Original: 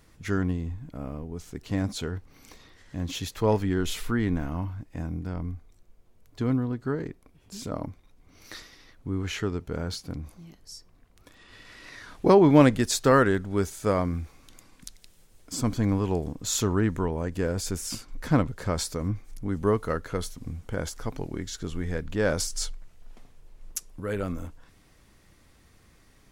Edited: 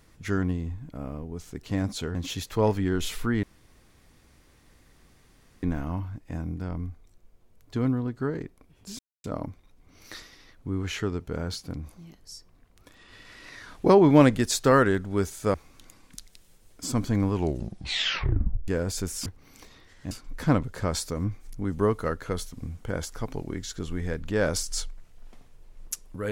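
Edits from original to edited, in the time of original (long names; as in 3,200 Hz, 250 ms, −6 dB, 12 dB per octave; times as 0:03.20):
0:02.15–0:03.00: move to 0:17.95
0:04.28: splice in room tone 2.20 s
0:07.64: splice in silence 0.25 s
0:13.94–0:14.23: remove
0:16.02: tape stop 1.35 s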